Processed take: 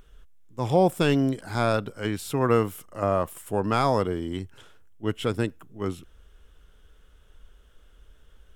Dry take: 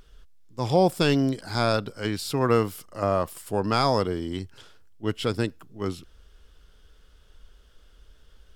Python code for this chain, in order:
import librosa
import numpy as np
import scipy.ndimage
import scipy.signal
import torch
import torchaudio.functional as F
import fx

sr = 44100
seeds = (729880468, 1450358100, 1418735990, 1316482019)

y = fx.peak_eq(x, sr, hz=4700.0, db=-11.5, octaves=0.52)